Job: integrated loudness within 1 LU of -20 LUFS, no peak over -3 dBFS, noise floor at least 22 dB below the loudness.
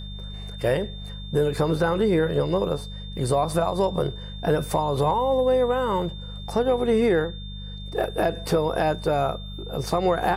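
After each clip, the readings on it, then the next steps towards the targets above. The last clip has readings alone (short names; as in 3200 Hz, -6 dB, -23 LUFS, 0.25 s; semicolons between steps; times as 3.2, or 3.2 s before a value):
hum 50 Hz; harmonics up to 200 Hz; hum level -34 dBFS; steady tone 3600 Hz; tone level -41 dBFS; loudness -24.0 LUFS; peak -11.0 dBFS; loudness target -20.0 LUFS
-> de-hum 50 Hz, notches 4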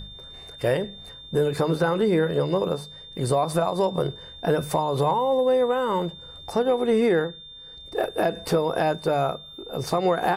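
hum none; steady tone 3600 Hz; tone level -41 dBFS
-> notch 3600 Hz, Q 30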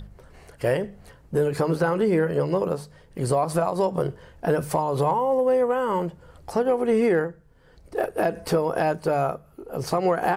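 steady tone none; loudness -24.5 LUFS; peak -11.5 dBFS; loudness target -20.0 LUFS
-> gain +4.5 dB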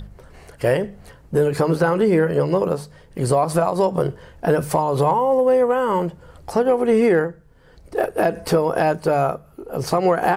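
loudness -20.0 LUFS; peak -7.0 dBFS; noise floor -49 dBFS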